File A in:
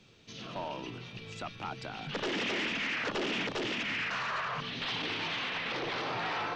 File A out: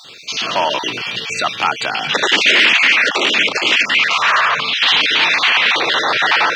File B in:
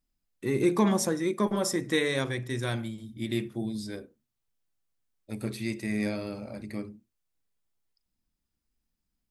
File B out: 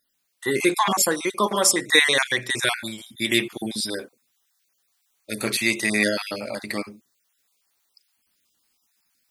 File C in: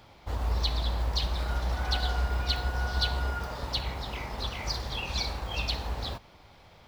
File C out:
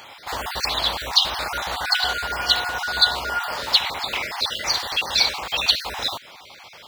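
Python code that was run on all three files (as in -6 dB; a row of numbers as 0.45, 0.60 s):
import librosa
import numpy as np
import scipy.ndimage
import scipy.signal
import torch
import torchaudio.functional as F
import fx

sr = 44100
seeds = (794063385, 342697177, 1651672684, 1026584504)

y = fx.spec_dropout(x, sr, seeds[0], share_pct=28)
y = fx.highpass(y, sr, hz=1500.0, slope=6)
y = fx.dynamic_eq(y, sr, hz=5300.0, q=3.7, threshold_db=-55.0, ratio=4.0, max_db=-4)
y = fx.rider(y, sr, range_db=3, speed_s=2.0)
y = y * 10.0 ** (-1.5 / 20.0) / np.max(np.abs(y))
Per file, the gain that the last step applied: +25.5, +17.5, +16.5 dB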